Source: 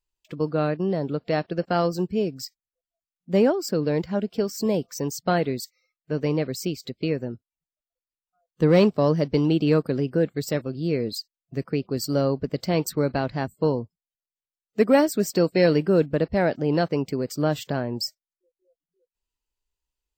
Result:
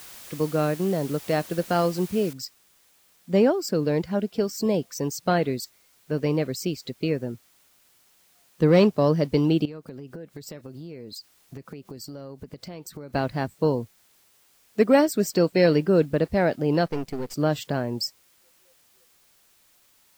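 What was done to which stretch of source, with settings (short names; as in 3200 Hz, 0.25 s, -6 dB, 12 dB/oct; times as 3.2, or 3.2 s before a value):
2.33 noise floor step -44 dB -61 dB
9.65–13.13 compressor 10:1, threshold -35 dBFS
16.86–17.34 half-wave gain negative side -12 dB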